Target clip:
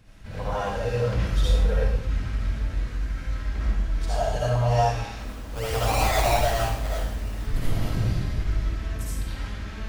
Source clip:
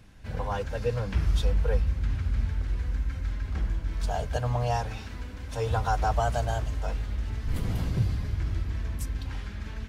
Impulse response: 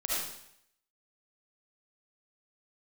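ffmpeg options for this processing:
-filter_complex "[0:a]asplit=3[s0][s1][s2];[s0]afade=t=out:st=5.15:d=0.02[s3];[s1]acrusher=samples=22:mix=1:aa=0.000001:lfo=1:lforange=13.2:lforate=2.6,afade=t=in:st=5.15:d=0.02,afade=t=out:st=7.38:d=0.02[s4];[s2]afade=t=in:st=7.38:d=0.02[s5];[s3][s4][s5]amix=inputs=3:normalize=0[s6];[1:a]atrim=start_sample=2205[s7];[s6][s7]afir=irnorm=-1:irlink=0,volume=0.841"

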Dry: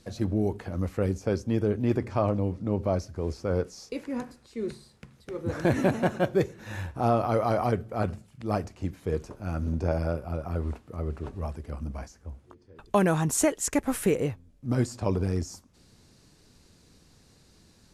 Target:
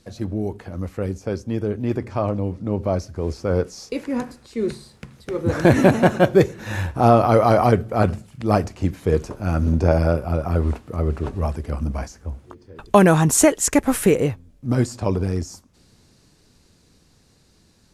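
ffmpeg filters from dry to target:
-af "dynaudnorm=f=230:g=31:m=3.76,volume=1.12"

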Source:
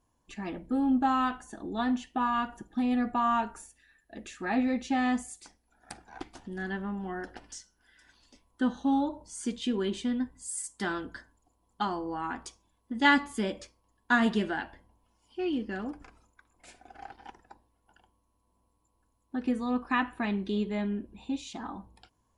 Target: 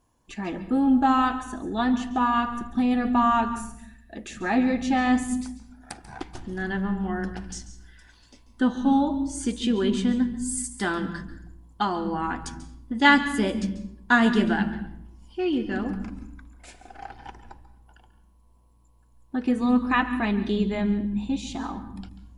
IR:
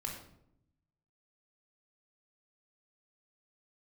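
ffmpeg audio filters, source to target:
-filter_complex "[0:a]asplit=2[s0][s1];[s1]asubboost=boost=6.5:cutoff=190[s2];[1:a]atrim=start_sample=2205,adelay=139[s3];[s2][s3]afir=irnorm=-1:irlink=0,volume=0.251[s4];[s0][s4]amix=inputs=2:normalize=0,volume=1.88"

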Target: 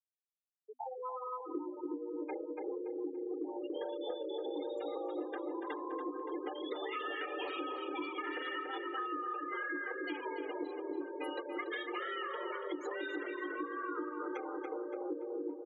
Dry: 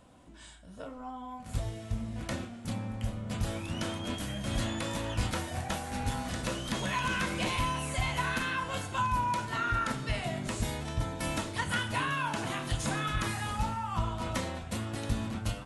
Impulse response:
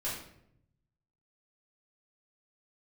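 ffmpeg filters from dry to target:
-filter_complex "[0:a]asettb=1/sr,asplit=3[s0][s1][s2];[s0]atrim=end=3.754[s3];[s1]atrim=start=3.75:end=5.25,asetpts=PTS-STARTPTS,afade=t=in:d=0.004:c=qsin,afade=t=out:st=1.496:d=0.004:c=qsin,equalizer=f=290:t=o:w=1.2:g=7[s4];[s2]atrim=start=5.246[s5];[s3][s4]acrossfade=d=0.004:c1=hsin:c2=qsin[s6];[s6][s5]acrossfade=d=0.004:c1=qsin:c2=hsin,afftfilt=real='re*gte(hypot(re,im),0.0447)':imag='im*gte(hypot(re,im),0.0447)':win_size=1024:overlap=0.75,asplit=2[s7][s8];[s8]adelay=285,lowpass=f=2200:p=1,volume=0.473,asplit=2[s9][s10];[s10]adelay=285,lowpass=f=2200:p=1,volume=0.52,asplit=2[s11][s12];[s12]adelay=285,lowpass=f=2200:p=1,volume=0.52,asplit=2[s13][s14];[s14]adelay=285,lowpass=f=2200:p=1,volume=0.52,asplit=2[s15][s16];[s16]adelay=285,lowpass=f=2200:p=1,volume=0.52,asplit=2[s17][s18];[s18]adelay=285,lowpass=f=2200:p=1,volume=0.52[s19];[s9][s11][s13][s15][s17][s19]amix=inputs=6:normalize=0[s20];[s7][s20]amix=inputs=2:normalize=0,afreqshift=250,acompressor=threshold=0.00708:ratio=6,volume=1.88"

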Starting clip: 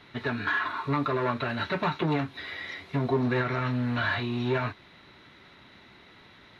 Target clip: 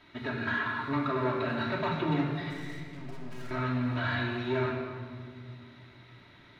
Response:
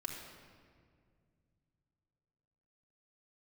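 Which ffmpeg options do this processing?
-filter_complex "[0:a]asettb=1/sr,asplit=3[s0][s1][s2];[s0]atrim=end=2.504[s3];[s1]atrim=start=2.5:end=3.51,asetpts=PTS-STARTPTS,afade=t=in:d=0.004:c=qsin,afade=t=out:st=1.006:d=0.004:c=qsin,aeval=exprs='(tanh(126*val(0)+0.65)-tanh(0.65))/126':c=same[s4];[s2]atrim=start=3.506[s5];[s3][s4]acrossfade=d=0.004:c1=hsin:c2=qsin[s6];[s6][s5]acrossfade=d=0.004:c1=qsin:c2=hsin[s7];[1:a]atrim=start_sample=2205[s8];[s7][s8]afir=irnorm=-1:irlink=0,volume=0.75"

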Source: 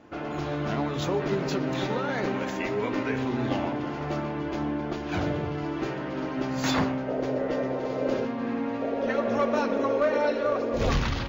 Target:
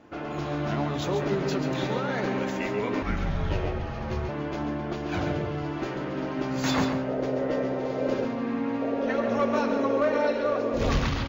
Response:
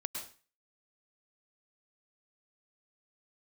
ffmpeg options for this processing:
-filter_complex "[0:a]asplit=2[s0][s1];[s1]aecho=0:1:138:0.376[s2];[s0][s2]amix=inputs=2:normalize=0,asettb=1/sr,asplit=3[s3][s4][s5];[s3]atrim=end=3.024[s6];[s4]atrim=start=3.02:end=4.29,asetpts=PTS-STARTPTS,afade=t=in:d=0.004:c=qsin,afade=t=out:st=1.266:d=0.004:c=qsin,afreqshift=-220[s7];[s5]atrim=start=4.286[s8];[s6][s7]acrossfade=d=0.004:c1=hsin:c2=qsin[s9];[s9][s8]acrossfade=d=0.004:c1=qsin:c2=hsin,asplit=2[s10][s11];[1:a]atrim=start_sample=2205[s12];[s11][s12]afir=irnorm=-1:irlink=0,volume=0.282[s13];[s10][s13]amix=inputs=2:normalize=0,volume=0.75"

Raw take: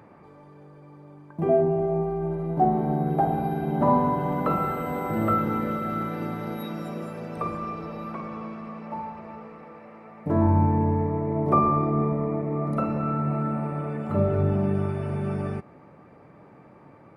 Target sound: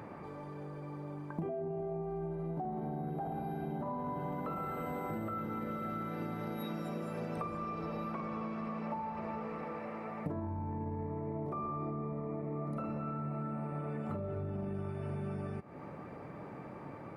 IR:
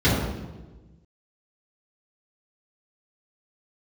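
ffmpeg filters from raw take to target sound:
-af "alimiter=limit=0.112:level=0:latency=1:release=15,acompressor=threshold=0.0112:ratio=16,volume=1.58"

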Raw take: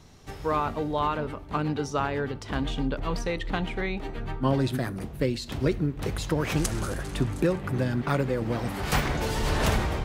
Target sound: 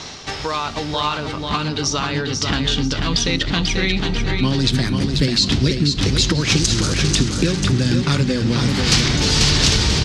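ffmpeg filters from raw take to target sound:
-filter_complex "[0:a]lowpass=f=5200:w=0.5412,lowpass=f=5200:w=1.3066,acrossover=split=3800[s0][s1];[s0]acompressor=threshold=0.0141:ratio=6[s2];[s2][s1]amix=inputs=2:normalize=0,aemphasis=mode=production:type=riaa,aecho=1:1:490|980|1470|1960:0.562|0.186|0.0612|0.0202,asubboost=boost=9:cutoff=220,areverse,acompressor=mode=upward:threshold=0.00794:ratio=2.5,areverse,alimiter=level_in=8.41:limit=0.891:release=50:level=0:latency=1,volume=0.891"

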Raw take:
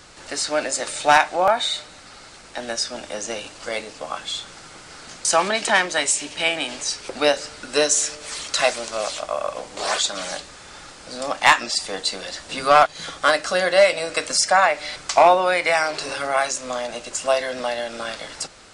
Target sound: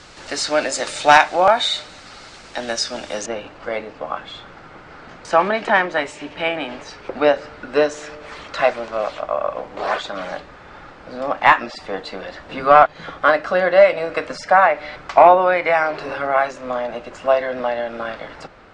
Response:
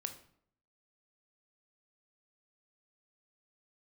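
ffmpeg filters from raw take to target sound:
-af "asetnsamples=n=441:p=0,asendcmd='3.26 lowpass f 1800',lowpass=6100,volume=1.58"

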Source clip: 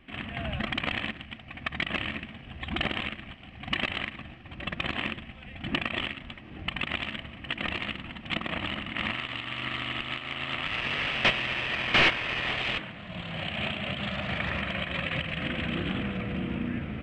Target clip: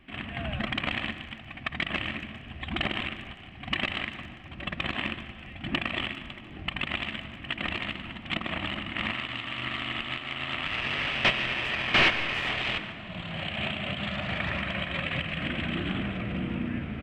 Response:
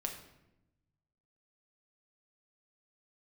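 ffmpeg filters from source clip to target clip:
-filter_complex "[0:a]bandreject=f=500:w=12,asplit=2[s0][s1];[s1]adelay=400,highpass=300,lowpass=3400,asoftclip=type=hard:threshold=0.075,volume=0.1[s2];[s0][s2]amix=inputs=2:normalize=0,asplit=2[s3][s4];[1:a]atrim=start_sample=2205,asetrate=26460,aresample=44100,adelay=146[s5];[s4][s5]afir=irnorm=-1:irlink=0,volume=0.158[s6];[s3][s6]amix=inputs=2:normalize=0"

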